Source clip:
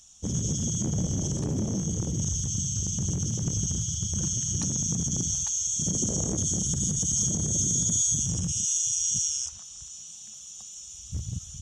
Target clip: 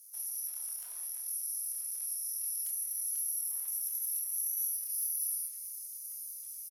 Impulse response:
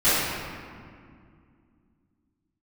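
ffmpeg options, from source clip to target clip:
-filter_complex "[0:a]aderivative,acompressor=threshold=-38dB:ratio=2,crystalizer=i=3.5:c=0,asoftclip=type=hard:threshold=-14.5dB,highpass=690,lowpass=3400,asplit=2[link_01][link_02];[link_02]adelay=45,volume=-4.5dB[link_03];[link_01][link_03]amix=inputs=2:normalize=0,aecho=1:1:463:0.141,asplit=2[link_04][link_05];[1:a]atrim=start_sample=2205,atrim=end_sample=6174[link_06];[link_05][link_06]afir=irnorm=-1:irlink=0,volume=-24dB[link_07];[link_04][link_07]amix=inputs=2:normalize=0,asetrate=76440,aresample=44100"

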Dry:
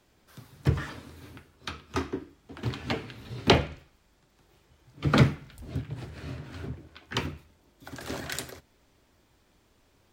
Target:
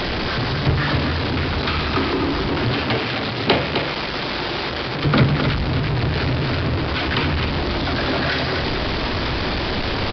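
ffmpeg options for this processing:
ffmpeg -i in.wav -filter_complex "[0:a]aeval=exprs='val(0)+0.5*0.133*sgn(val(0))':channel_layout=same,asettb=1/sr,asplit=3[link_01][link_02][link_03];[link_01]atrim=end=2.764[link_04];[link_02]atrim=start=2.76:end=5.04,asetpts=PTS-STARTPTS,afade=type=in:duration=0.004:curve=qsin,afade=type=out:start_time=2.276:duration=0.004:curve=qsin,highpass=frequency=230:poles=1[link_05];[link_03]atrim=start=5.036[link_06];[link_04][link_05]acrossfade=duration=0.004:curve1=hsin:curve2=qsin[link_07];[link_07][link_06]acrossfade=duration=0.004:curve1=qsin:curve2=hsin,aecho=1:1:260:0.473,aresample=11025,aresample=44100,volume=1.5dB" out.wav

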